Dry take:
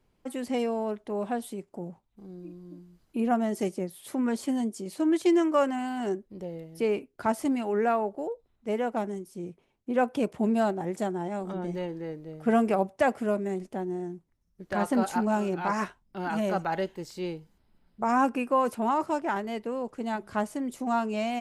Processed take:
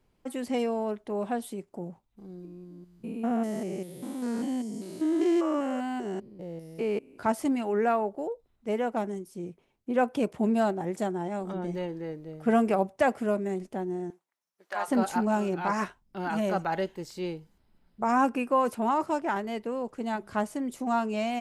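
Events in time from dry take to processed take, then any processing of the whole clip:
0:02.45–0:07.23: spectrum averaged block by block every 200 ms
0:14.10–0:14.88: Chebyshev high-pass filter 830 Hz

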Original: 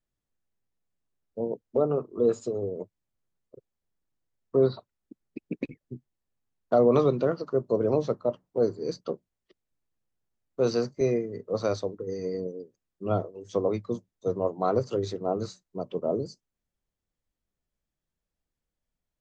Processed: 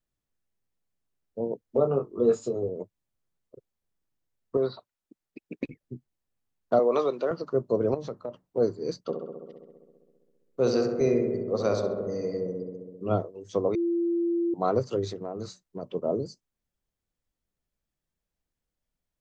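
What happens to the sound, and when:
0:01.67–0:02.69: double-tracking delay 22 ms −5 dB
0:04.57–0:05.63: low-shelf EQ 380 Hz −10.5 dB
0:06.79–0:07.31: high-pass filter 440 Hz
0:07.94–0:08.45: downward compressor, threshold −30 dBFS
0:09.01–0:13.16: feedback echo with a low-pass in the loop 66 ms, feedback 80%, low-pass 2,100 Hz, level −5.5 dB
0:13.75–0:14.54: beep over 341 Hz −23 dBFS
0:15.11–0:15.83: downward compressor, threshold −30 dBFS

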